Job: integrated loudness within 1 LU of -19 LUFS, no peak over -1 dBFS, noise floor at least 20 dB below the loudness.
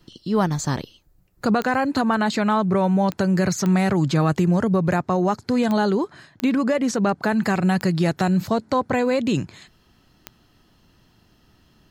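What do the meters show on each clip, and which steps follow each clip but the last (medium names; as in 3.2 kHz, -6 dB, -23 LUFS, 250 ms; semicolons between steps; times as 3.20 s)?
clicks found 7; loudness -21.5 LUFS; peak level -7.5 dBFS; loudness target -19.0 LUFS
-> de-click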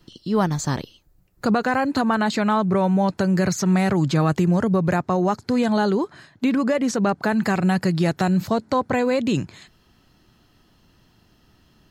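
clicks found 0; loudness -21.5 LUFS; peak level -7.5 dBFS; loudness target -19.0 LUFS
-> trim +2.5 dB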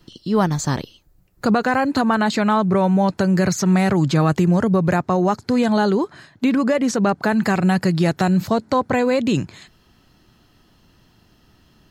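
loudness -19.0 LUFS; peak level -5.0 dBFS; noise floor -57 dBFS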